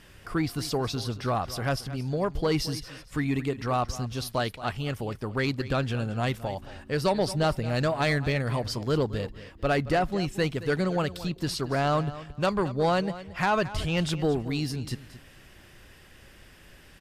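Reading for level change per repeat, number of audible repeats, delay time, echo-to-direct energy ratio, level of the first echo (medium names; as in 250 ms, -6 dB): -13.0 dB, 2, 224 ms, -15.5 dB, -15.5 dB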